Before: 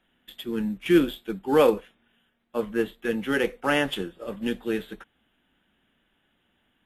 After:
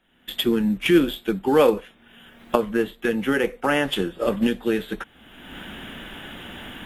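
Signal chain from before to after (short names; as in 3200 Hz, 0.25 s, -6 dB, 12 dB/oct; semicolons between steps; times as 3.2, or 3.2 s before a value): recorder AGC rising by 34 dB/s; 3.11–3.83 dynamic EQ 4100 Hz, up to -6 dB, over -46 dBFS, Q 1.7; gain +2 dB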